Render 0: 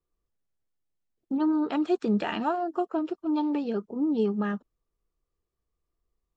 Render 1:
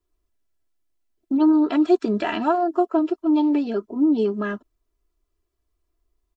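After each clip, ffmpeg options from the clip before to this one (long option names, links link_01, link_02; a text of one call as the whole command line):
ffmpeg -i in.wav -af "aecho=1:1:3:0.8,volume=3.5dB" out.wav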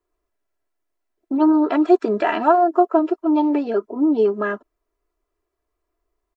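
ffmpeg -i in.wav -af "firequalizer=gain_entry='entry(140,0);entry(460,13);entry(2000,10);entry(3200,3)':delay=0.05:min_phase=1,volume=-6dB" out.wav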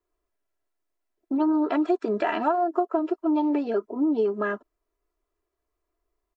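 ffmpeg -i in.wav -af "acompressor=threshold=-16dB:ratio=6,volume=-3.5dB" out.wav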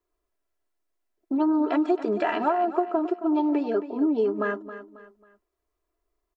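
ffmpeg -i in.wav -af "aecho=1:1:271|542|813:0.224|0.0784|0.0274" out.wav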